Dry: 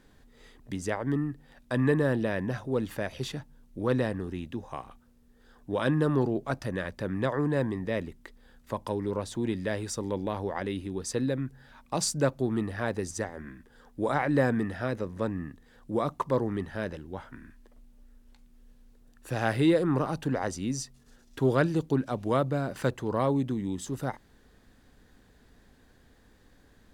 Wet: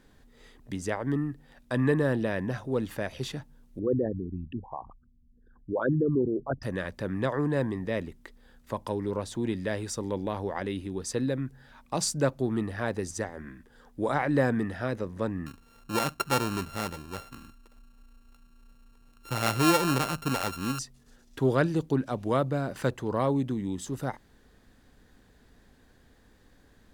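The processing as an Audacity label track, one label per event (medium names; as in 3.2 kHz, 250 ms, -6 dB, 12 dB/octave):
3.790000	6.630000	resonances exaggerated exponent 3
15.460000	20.790000	sorted samples in blocks of 32 samples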